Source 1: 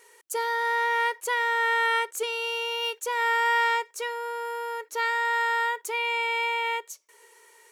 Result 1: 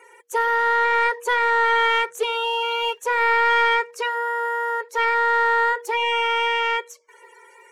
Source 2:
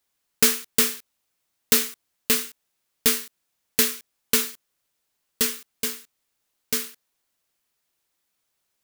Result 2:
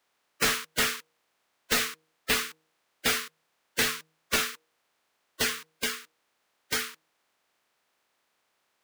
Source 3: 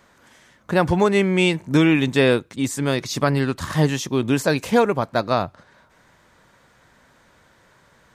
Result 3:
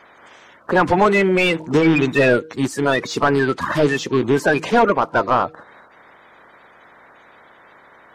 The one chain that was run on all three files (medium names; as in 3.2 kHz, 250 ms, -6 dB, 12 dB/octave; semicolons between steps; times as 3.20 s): coarse spectral quantiser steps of 30 dB; overdrive pedal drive 21 dB, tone 1.2 kHz, clips at -1.5 dBFS; de-hum 158.1 Hz, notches 3; trim -1.5 dB